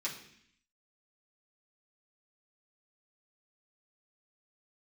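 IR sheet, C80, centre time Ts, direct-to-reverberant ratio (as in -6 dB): 11.0 dB, 24 ms, -7.0 dB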